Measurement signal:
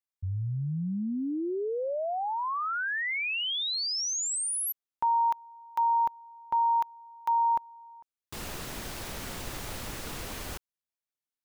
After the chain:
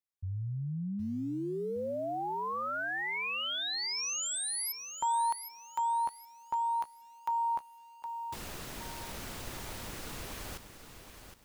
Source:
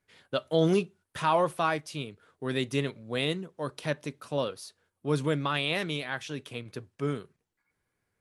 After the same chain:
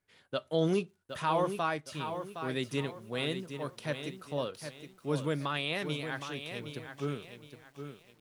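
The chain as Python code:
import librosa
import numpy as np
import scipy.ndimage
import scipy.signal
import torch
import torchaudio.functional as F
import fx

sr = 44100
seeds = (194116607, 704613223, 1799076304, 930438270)

y = fx.echo_crushed(x, sr, ms=765, feedback_pct=35, bits=9, wet_db=-8.5)
y = y * 10.0 ** (-4.5 / 20.0)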